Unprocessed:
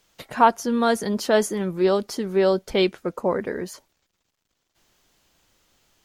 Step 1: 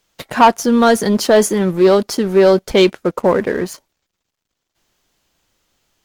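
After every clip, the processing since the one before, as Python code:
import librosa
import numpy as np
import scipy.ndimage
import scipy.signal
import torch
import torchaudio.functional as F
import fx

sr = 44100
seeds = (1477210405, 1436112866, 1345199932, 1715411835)

y = fx.leveller(x, sr, passes=2)
y = F.gain(torch.from_numpy(y), 2.5).numpy()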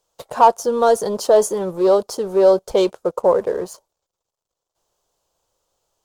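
y = fx.graphic_eq(x, sr, hz=(250, 500, 1000, 2000, 8000), db=(-9, 10, 7, -11, 5))
y = F.gain(torch.from_numpy(y), -8.5).numpy()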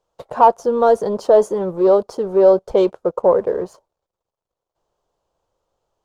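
y = fx.lowpass(x, sr, hz=1300.0, slope=6)
y = F.gain(torch.from_numpy(y), 2.0).numpy()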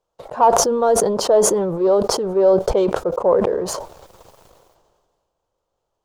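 y = fx.sustainer(x, sr, db_per_s=31.0)
y = F.gain(torch.from_numpy(y), -3.0).numpy()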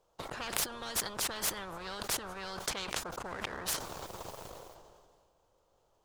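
y = fx.spectral_comp(x, sr, ratio=10.0)
y = F.gain(torch.from_numpy(y), -7.5).numpy()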